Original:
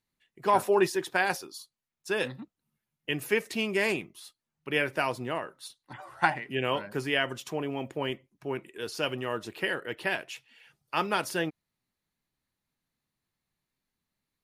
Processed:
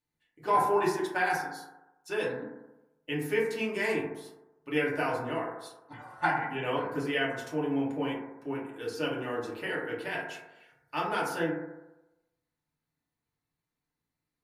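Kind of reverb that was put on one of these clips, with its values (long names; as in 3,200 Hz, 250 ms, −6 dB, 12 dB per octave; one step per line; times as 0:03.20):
feedback delay network reverb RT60 0.99 s, low-frequency decay 0.85×, high-frequency decay 0.25×, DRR −6 dB
level −8.5 dB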